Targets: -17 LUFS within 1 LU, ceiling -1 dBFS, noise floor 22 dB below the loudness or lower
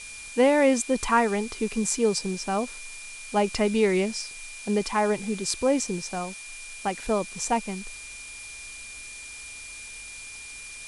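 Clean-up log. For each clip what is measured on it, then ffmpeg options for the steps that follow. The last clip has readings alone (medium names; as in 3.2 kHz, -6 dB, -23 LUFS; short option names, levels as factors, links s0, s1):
steady tone 2.4 kHz; tone level -41 dBFS; noise floor -41 dBFS; noise floor target -48 dBFS; loudness -26.0 LUFS; peak level -7.5 dBFS; loudness target -17.0 LUFS
-> -af "bandreject=f=2400:w=30"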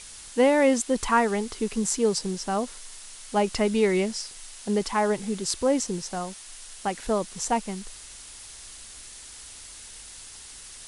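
steady tone not found; noise floor -44 dBFS; noise floor target -48 dBFS
-> -af "afftdn=nr=6:nf=-44"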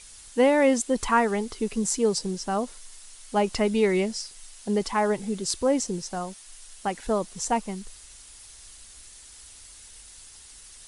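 noise floor -48 dBFS; loudness -26.0 LUFS; peak level -7.5 dBFS; loudness target -17.0 LUFS
-> -af "volume=2.82,alimiter=limit=0.891:level=0:latency=1"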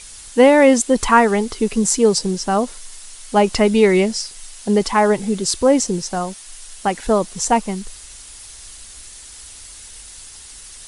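loudness -17.0 LUFS; peak level -1.0 dBFS; noise floor -39 dBFS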